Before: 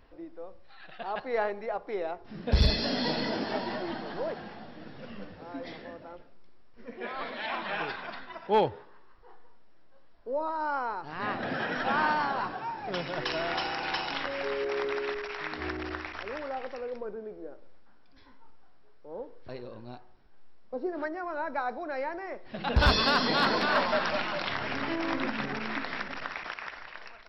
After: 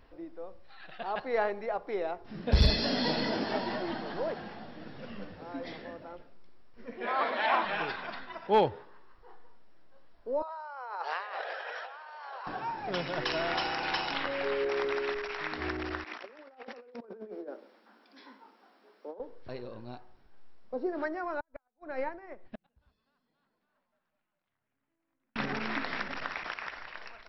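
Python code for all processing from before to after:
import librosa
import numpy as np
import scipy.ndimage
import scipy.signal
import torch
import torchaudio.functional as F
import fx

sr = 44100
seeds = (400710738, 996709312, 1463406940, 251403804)

y = fx.chain(x, sr, fx.highpass(hz=200.0, slope=24),
    fx.peak_eq(hz=900.0, db=9.0, octaves=2.3), at=(7.07, 7.65))
y = fx.chain(y, sr, fx.steep_highpass(hz=460.0, slope=48),
    fx.over_compress(threshold_db=-41.0, ratio=-1.0), at=(10.42, 12.47))
y = fx.chain(y, sr, fx.lowpass(hz=5000.0, slope=24),
    fx.doubler(ms=22.0, db=-13.5), at=(14.14, 14.69))
y = fx.chain(y, sr, fx.steep_highpass(hz=200.0, slope=96),
    fx.over_compress(threshold_db=-44.0, ratio=-0.5), at=(16.04, 19.2))
y = fx.chain(y, sr, fx.bass_treble(bass_db=7, treble_db=-9),
    fx.gate_flip(shuts_db=-23.0, range_db=-31),
    fx.upward_expand(threshold_db=-45.0, expansion=2.5), at=(21.4, 25.36))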